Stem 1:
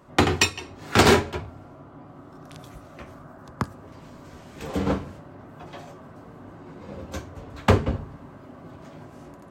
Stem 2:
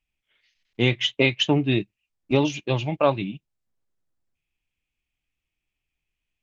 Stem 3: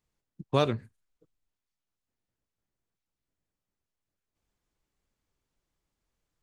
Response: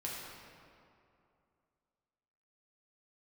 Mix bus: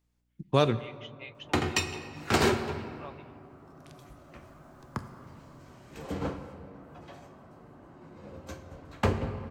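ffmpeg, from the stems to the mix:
-filter_complex "[0:a]bandreject=f=3.5k:w=21,adelay=1350,volume=-10.5dB,asplit=2[a][b];[b]volume=-6dB[c];[1:a]highpass=910,highshelf=f=3.4k:g=-11.5,aeval=exprs='val(0)+0.00158*(sin(2*PI*60*n/s)+sin(2*PI*2*60*n/s)/2+sin(2*PI*3*60*n/s)/3+sin(2*PI*4*60*n/s)/4+sin(2*PI*5*60*n/s)/5)':c=same,volume=-19dB,asplit=2[d][e];[2:a]dynaudnorm=f=270:g=9:m=15.5dB,volume=-0.5dB,asplit=2[f][g];[g]volume=-13.5dB[h];[e]apad=whole_len=283473[i];[f][i]sidechaincompress=threshold=-54dB:ratio=8:attack=5.4:release=1460[j];[3:a]atrim=start_sample=2205[k];[c][h]amix=inputs=2:normalize=0[l];[l][k]afir=irnorm=-1:irlink=0[m];[a][d][j][m]amix=inputs=4:normalize=0"

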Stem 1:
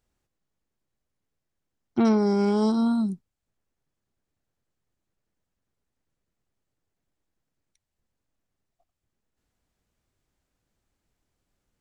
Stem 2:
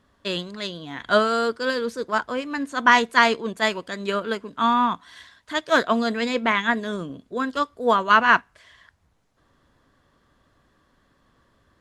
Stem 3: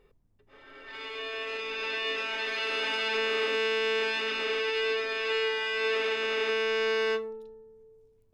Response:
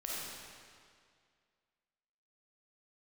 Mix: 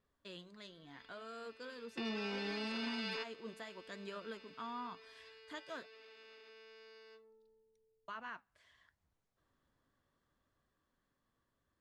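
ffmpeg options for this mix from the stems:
-filter_complex "[0:a]highpass=170,volume=-16.5dB,asplit=2[a][b];[1:a]acompressor=threshold=-25dB:ratio=2,alimiter=limit=-19.5dB:level=0:latency=1:release=187,flanger=delay=1.6:depth=7.3:regen=-75:speed=0.75:shape=sinusoidal,volume=-16.5dB,asplit=3[c][d][e];[c]atrim=end=5.87,asetpts=PTS-STARTPTS,afade=t=out:st=5.866:d=0.004:c=hsin[f];[d]atrim=start=5.87:end=8.08,asetpts=PTS-STARTPTS,volume=0[g];[e]atrim=start=8.08,asetpts=PTS-STARTPTS,afade=t=in:d=0.004:c=hsin[h];[f][g][h]concat=n=3:v=0:a=1[i];[2:a]equalizer=f=4.6k:t=o:w=0.26:g=14,alimiter=level_in=5dB:limit=-24dB:level=0:latency=1:release=414,volume=-5dB,volume=-2dB[j];[b]apad=whole_len=367393[k];[j][k]sidechaingate=range=-24dB:threshold=-58dB:ratio=16:detection=peak[l];[i][l]amix=inputs=2:normalize=0,dynaudnorm=f=560:g=9:m=4dB,alimiter=level_in=9dB:limit=-24dB:level=0:latency=1,volume=-9dB,volume=0dB[m];[a][m]amix=inputs=2:normalize=0,alimiter=level_in=7.5dB:limit=-24dB:level=0:latency=1:release=61,volume=-7.5dB"

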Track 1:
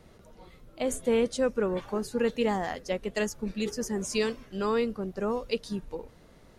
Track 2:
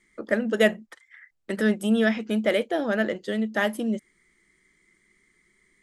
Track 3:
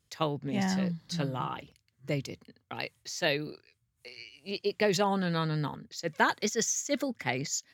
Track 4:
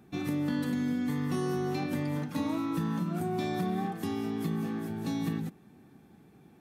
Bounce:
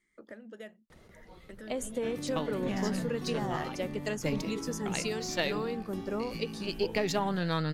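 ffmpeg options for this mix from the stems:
-filter_complex "[0:a]acompressor=threshold=-28dB:ratio=6,adelay=900,volume=-2dB[a];[1:a]acompressor=threshold=-36dB:ratio=3,volume=-12dB,asplit=2[b][c];[2:a]aeval=exprs='if(lt(val(0),0),0.708*val(0),val(0))':c=same,bandreject=f=144.7:t=h:w=4,bandreject=f=289.4:t=h:w=4,bandreject=f=434.1:t=h:w=4,bandreject=f=578.8:t=h:w=4,bandreject=f=723.5:t=h:w=4,bandreject=f=868.2:t=h:w=4,bandreject=f=1.0129k:t=h:w=4,bandreject=f=1.1576k:t=h:w=4,bandreject=f=1.3023k:t=h:w=4,bandreject=f=1.447k:t=h:w=4,bandreject=f=1.5917k:t=h:w=4,bandreject=f=1.7364k:t=h:w=4,bandreject=f=1.8811k:t=h:w=4,bandreject=f=2.0258k:t=h:w=4,bandreject=f=2.1705k:t=h:w=4,bandreject=f=2.3152k:t=h:w=4,bandreject=f=2.4599k:t=h:w=4,bandreject=f=2.6046k:t=h:w=4,bandreject=f=2.7493k:t=h:w=4,bandreject=f=2.894k:t=h:w=4,bandreject=f=3.0387k:t=h:w=4,bandreject=f=3.1834k:t=h:w=4,bandreject=f=3.3281k:t=h:w=4,bandreject=f=3.4728k:t=h:w=4,bandreject=f=3.6175k:t=h:w=4,bandreject=f=3.7622k:t=h:w=4,bandreject=f=3.9069k:t=h:w=4,bandreject=f=4.0516k:t=h:w=4,adelay=2150,volume=1dB[d];[3:a]adelay=1900,volume=-9dB[e];[c]apad=whole_len=435965[f];[d][f]sidechaincompress=threshold=-49dB:ratio=4:attack=12:release=276[g];[a][b][g][e]amix=inputs=4:normalize=0,alimiter=limit=-15.5dB:level=0:latency=1:release=417"

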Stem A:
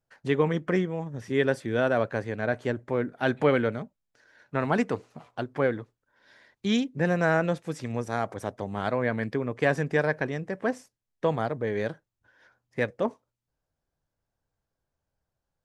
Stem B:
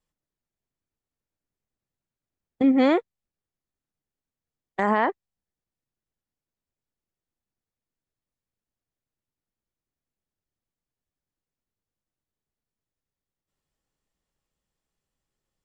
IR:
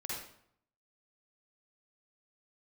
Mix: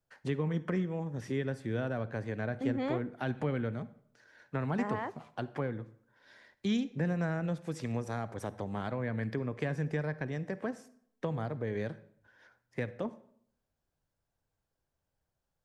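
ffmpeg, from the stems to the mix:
-filter_complex "[0:a]acrossover=split=210[a][b];[b]acompressor=threshold=-33dB:ratio=6[c];[a][c]amix=inputs=2:normalize=0,volume=-2.5dB,asplit=2[d][e];[e]volume=-15.5dB[f];[1:a]volume=-15.5dB,asplit=2[g][h];[h]volume=-21.5dB[i];[2:a]atrim=start_sample=2205[j];[f][i]amix=inputs=2:normalize=0[k];[k][j]afir=irnorm=-1:irlink=0[l];[d][g][l]amix=inputs=3:normalize=0"

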